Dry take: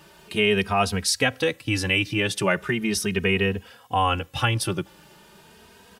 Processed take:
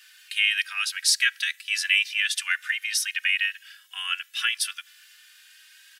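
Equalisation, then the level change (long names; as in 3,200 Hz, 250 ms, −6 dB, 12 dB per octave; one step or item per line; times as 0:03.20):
elliptic high-pass filter 1,600 Hz, stop band 70 dB
+3.0 dB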